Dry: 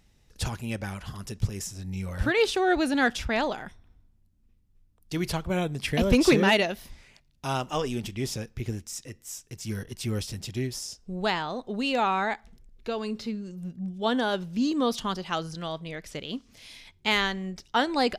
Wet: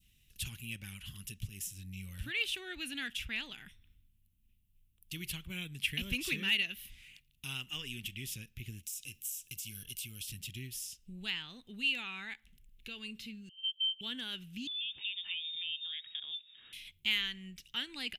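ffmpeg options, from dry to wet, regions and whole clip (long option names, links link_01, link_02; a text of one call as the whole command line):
ffmpeg -i in.wav -filter_complex "[0:a]asettb=1/sr,asplit=3[link_01][link_02][link_03];[link_01]atrim=end=8.834[link_04];[link_02]atrim=start=8.83:end=10.27,asetpts=PTS-STARTPTS,afade=type=in:duration=0.004:curve=qsin,afade=type=out:start_time=1.436:duration=0.004:curve=qsin,highshelf=frequency=2100:gain=10,acompressor=threshold=-34dB:ratio=10:attack=3.2:release=140:knee=1:detection=peak,asuperstop=centerf=1900:order=12:qfactor=7[link_05];[link_03]atrim=start=10.266[link_06];[link_04][link_05]acrossfade=duration=0.004:curve1=hsin:curve2=qsin[link_07];[link_07][link_06]acrossfade=duration=0.004:curve1=qsin:curve2=hsin,asettb=1/sr,asplit=3[link_08][link_09][link_10];[link_08]atrim=end=13.494[link_11];[link_09]atrim=start=13.49:end=14.01,asetpts=PTS-STARTPTS,afade=type=in:duration=0.004:curve=qsin,afade=type=out:start_time=0.516:duration=0.004:curve=qsin,agate=range=-22dB:threshold=-37dB:ratio=16:release=100:detection=peak,lowpass=frequency=2800:width_type=q:width=0.5098,lowpass=frequency=2800:width_type=q:width=0.6013,lowpass=frequency=2800:width_type=q:width=0.9,lowpass=frequency=2800:width_type=q:width=2.563,afreqshift=-3300[link_12];[link_10]atrim=start=14.006[link_13];[link_11][link_12]acrossfade=duration=0.004:curve1=hsin:curve2=qsin[link_14];[link_14][link_13]acrossfade=duration=0.004:curve1=qsin:curve2=hsin,asettb=1/sr,asplit=3[link_15][link_16][link_17];[link_15]atrim=end=14.674[link_18];[link_16]atrim=start=14.67:end=16.73,asetpts=PTS-STARTPTS,afade=type=in:duration=0.004:curve=qsin,afade=type=out:start_time=2.056:duration=0.004:curve=qsin,acompressor=threshold=-33dB:ratio=16:attack=3.2:release=140:knee=1:detection=peak,lowpass=frequency=3200:width_type=q:width=0.5098,lowpass=frequency=3200:width_type=q:width=0.6013,lowpass=frequency=3200:width_type=q:width=0.9,lowpass=frequency=3200:width_type=q:width=2.563,afreqshift=-3800[link_19];[link_17]atrim=start=16.726[link_20];[link_18][link_19]acrossfade=duration=0.004:curve1=hsin:curve2=qsin[link_21];[link_21][link_20]acrossfade=duration=0.004:curve1=qsin:curve2=hsin,adynamicequalizer=threshold=0.0126:dfrequency=1700:dqfactor=0.88:tfrequency=1700:tqfactor=0.88:attack=5:release=100:ratio=0.375:range=3:mode=boostabove:tftype=bell,acompressor=threshold=-42dB:ratio=1.5,firequalizer=gain_entry='entry(150,0);entry(620,-21);entry(2800,13);entry(4700,-1);entry(12000,15)':delay=0.05:min_phase=1,volume=-7dB" out.wav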